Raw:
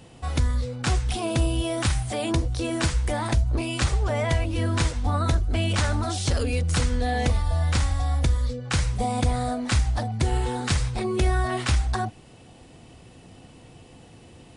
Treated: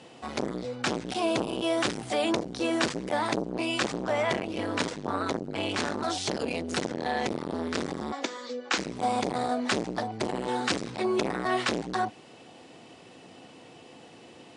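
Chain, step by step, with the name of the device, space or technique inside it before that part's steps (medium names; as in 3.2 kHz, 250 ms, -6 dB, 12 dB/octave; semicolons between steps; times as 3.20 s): 8.12–8.78 s: elliptic band-pass 260–7200 Hz, stop band 40 dB; public-address speaker with an overloaded transformer (transformer saturation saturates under 440 Hz; band-pass 270–6600 Hz); trim +2.5 dB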